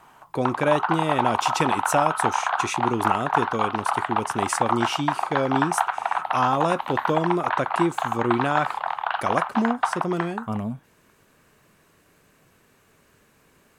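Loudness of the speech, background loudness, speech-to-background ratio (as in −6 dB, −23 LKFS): −26.5 LKFS, −26.0 LKFS, −0.5 dB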